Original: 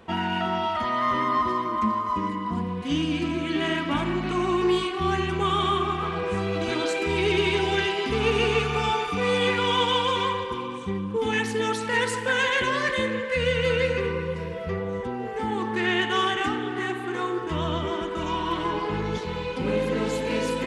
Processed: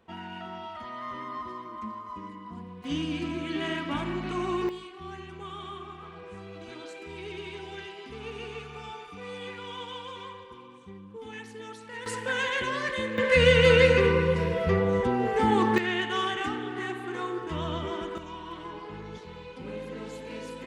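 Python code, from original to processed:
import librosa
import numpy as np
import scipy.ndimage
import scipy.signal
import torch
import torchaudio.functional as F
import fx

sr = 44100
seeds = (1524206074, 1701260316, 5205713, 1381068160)

y = fx.gain(x, sr, db=fx.steps((0.0, -13.5), (2.84, -5.5), (4.69, -16.5), (12.06, -5.5), (13.18, 5.0), (15.78, -5.0), (18.18, -13.0)))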